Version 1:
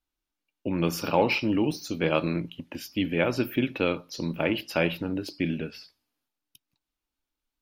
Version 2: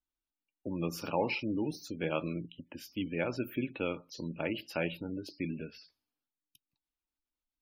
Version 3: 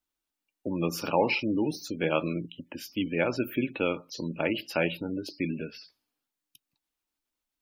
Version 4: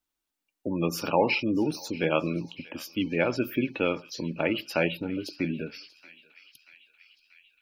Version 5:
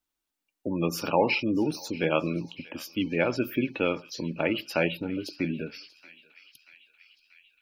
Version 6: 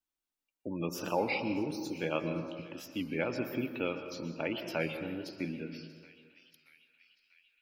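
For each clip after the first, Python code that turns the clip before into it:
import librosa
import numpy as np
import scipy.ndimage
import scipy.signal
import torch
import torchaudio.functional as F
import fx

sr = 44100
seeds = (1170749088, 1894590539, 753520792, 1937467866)

y1 = fx.spec_gate(x, sr, threshold_db=-25, keep='strong')
y1 = y1 * 10.0 ** (-8.5 / 20.0)
y2 = fx.low_shelf(y1, sr, hz=110.0, db=-8.5)
y2 = y2 * 10.0 ** (7.0 / 20.0)
y3 = fx.echo_banded(y2, sr, ms=636, feedback_pct=74, hz=2900.0, wet_db=-17.5)
y3 = y3 * 10.0 ** (1.5 / 20.0)
y4 = y3
y5 = fx.rev_plate(y4, sr, seeds[0], rt60_s=1.6, hf_ratio=0.4, predelay_ms=110, drr_db=7.5)
y5 = fx.record_warp(y5, sr, rpm=33.33, depth_cents=100.0)
y5 = y5 * 10.0 ** (-8.0 / 20.0)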